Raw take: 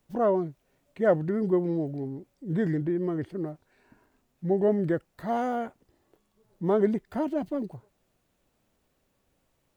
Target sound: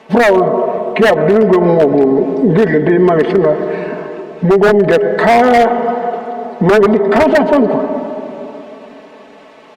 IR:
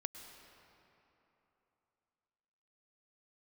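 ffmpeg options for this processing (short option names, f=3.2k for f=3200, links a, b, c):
-filter_complex "[0:a]equalizer=f=1.4k:w=7.7:g=-6.5,aecho=1:1:4.6:0.92,acompressor=threshold=-33dB:ratio=4,highpass=410,lowpass=2.6k,asplit=2[a][b];[1:a]atrim=start_sample=2205,lowshelf=f=100:g=7[c];[b][c]afir=irnorm=-1:irlink=0,volume=6dB[d];[a][d]amix=inputs=2:normalize=0,aeval=exprs='0.0562*(abs(mod(val(0)/0.0562+3,4)-2)-1)':c=same,alimiter=level_in=29dB:limit=-1dB:release=50:level=0:latency=1,volume=-1.5dB" -ar 48000 -c:a libopus -b:a 48k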